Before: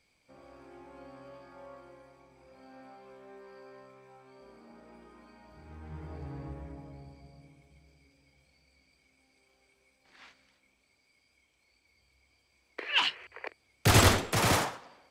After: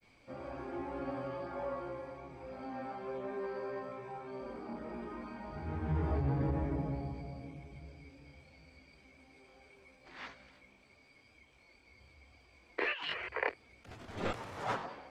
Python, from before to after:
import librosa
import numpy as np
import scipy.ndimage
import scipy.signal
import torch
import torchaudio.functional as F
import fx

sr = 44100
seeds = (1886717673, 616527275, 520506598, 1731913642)

y = fx.lowpass(x, sr, hz=1900.0, slope=6)
y = fx.over_compress(y, sr, threshold_db=-42.0, ratio=-1.0)
y = fx.granulator(y, sr, seeds[0], grain_ms=92.0, per_s=31.0, spray_ms=17.0, spread_st=0)
y = y * librosa.db_to_amplitude(6.5)